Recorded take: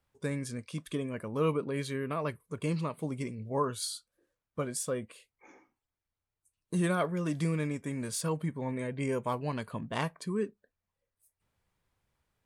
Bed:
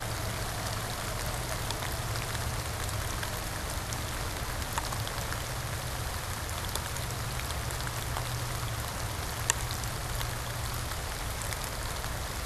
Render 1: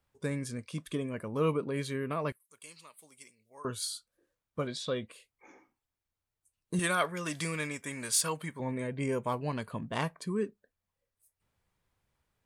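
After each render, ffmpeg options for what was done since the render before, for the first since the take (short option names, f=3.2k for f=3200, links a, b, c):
-filter_complex "[0:a]asettb=1/sr,asplit=3[a][b][c];[a]atrim=end=2.324[d];[b]atrim=start=2.32:end=3.65,asetpts=PTS-STARTPTS,afade=t=in:d=0.004:c=qsin,afade=t=out:st=1.326:d=0.004:c=qsin,aderivative[e];[c]atrim=start=3.646[f];[d][e]acrossfade=d=0.004:c1=hsin:c2=qsin[g];[g][f]acrossfade=d=0.004:c1=qsin:c2=hsin,asettb=1/sr,asplit=3[h][i][j];[h]atrim=end=4.674[k];[i]atrim=start=4.67:end=5.07,asetpts=PTS-STARTPTS,afade=t=in:d=0.004:c=qsin,afade=t=out:st=0.396:d=0.004:c=qsin,lowpass=f=3.8k:t=q:w=11[l];[j]atrim=start=5.066[m];[k][l]acrossfade=d=0.004:c1=hsin:c2=qsin[n];[n][m]acrossfade=d=0.004:c1=qsin:c2=hsin,asettb=1/sr,asplit=3[o][p][q];[o]atrim=end=6.794[r];[p]atrim=start=6.79:end=8.6,asetpts=PTS-STARTPTS,afade=t=in:d=0.004:c=qsin,afade=t=out:st=1.806:d=0.004:c=qsin,tiltshelf=f=700:g=-8.5[s];[q]atrim=start=8.596[t];[r][s]acrossfade=d=0.004:c1=hsin:c2=qsin[u];[u][t]acrossfade=d=0.004:c1=qsin:c2=hsin"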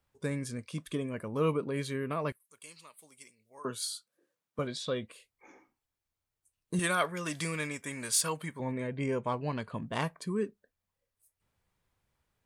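-filter_complex "[0:a]asettb=1/sr,asplit=3[a][b][c];[a]atrim=end=3.594[d];[b]atrim=start=3.59:end=4.59,asetpts=PTS-STARTPTS,afade=t=in:d=0.004:c=qsin,afade=t=out:st=0.996:d=0.004:c=qsin,highpass=f=140:w=0.5412,highpass=f=140:w=1.3066[e];[c]atrim=start=4.586[f];[d][e]acrossfade=d=0.004:c1=hsin:c2=qsin[g];[g][f]acrossfade=d=0.004:c1=qsin:c2=hsin,asettb=1/sr,asplit=3[h][i][j];[h]atrim=end=8.724[k];[i]atrim=start=8.72:end=9.74,asetpts=PTS-STARTPTS,afade=t=in:d=0.004:c=qsin,afade=t=out:st=1.016:d=0.004:c=qsin,lowpass=5.9k[l];[j]atrim=start=9.736[m];[k][l]acrossfade=d=0.004:c1=hsin:c2=qsin[n];[n][m]acrossfade=d=0.004:c1=qsin:c2=hsin"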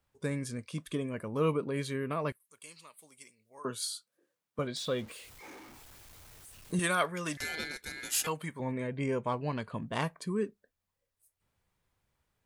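-filter_complex "[0:a]asettb=1/sr,asplit=3[a][b][c];[a]atrim=end=4.764[d];[b]atrim=start=4.76:end=6.74,asetpts=PTS-STARTPTS,afade=t=in:d=0.004:c=qsin,afade=t=out:st=1.976:d=0.004:c=qsin,aeval=exprs='val(0)+0.5*0.00473*sgn(val(0))':c=same[e];[c]atrim=start=6.736[f];[d][e]acrossfade=d=0.004:c1=hsin:c2=qsin[g];[g][f]acrossfade=d=0.004:c1=qsin:c2=hsin,asettb=1/sr,asplit=3[h][i][j];[h]atrim=end=7.374[k];[i]atrim=start=7.37:end=8.27,asetpts=PTS-STARTPTS,afade=t=in:d=0.004:c=qsin,afade=t=out:st=0.896:d=0.004:c=qsin,aeval=exprs='val(0)*sin(2*PI*1900*n/s)':c=same[l];[j]atrim=start=8.266[m];[k][l]acrossfade=d=0.004:c1=hsin:c2=qsin[n];[n][m]acrossfade=d=0.004:c1=qsin:c2=hsin"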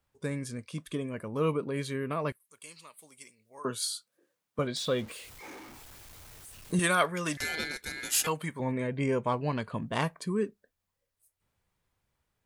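-af "dynaudnorm=f=460:g=11:m=3.5dB"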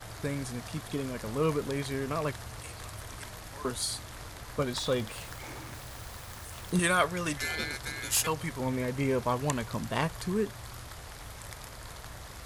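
-filter_complex "[1:a]volume=-9.5dB[a];[0:a][a]amix=inputs=2:normalize=0"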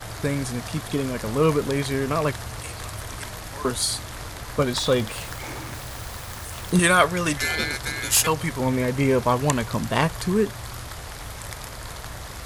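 -af "volume=8.5dB"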